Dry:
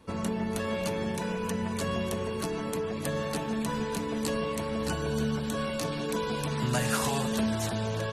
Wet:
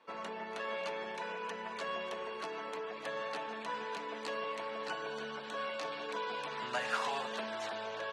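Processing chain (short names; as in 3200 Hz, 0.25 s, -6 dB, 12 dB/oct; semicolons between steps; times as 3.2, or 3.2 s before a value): BPF 650–3300 Hz; gain -2 dB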